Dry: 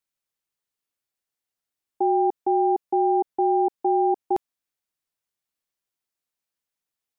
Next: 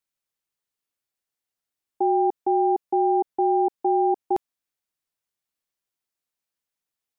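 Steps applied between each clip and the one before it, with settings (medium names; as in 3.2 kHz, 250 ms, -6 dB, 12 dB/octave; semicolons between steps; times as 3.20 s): no audible change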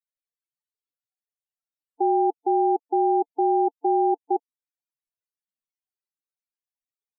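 loudest bins only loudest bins 16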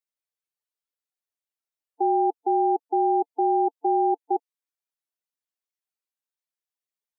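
high-pass 310 Hz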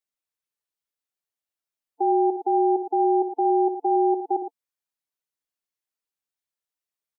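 multi-tap echo 62/73/114 ms -11.5/-18.5/-10.5 dB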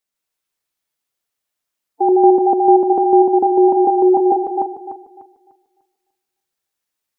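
backward echo that repeats 149 ms, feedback 53%, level -1 dB; trim +7 dB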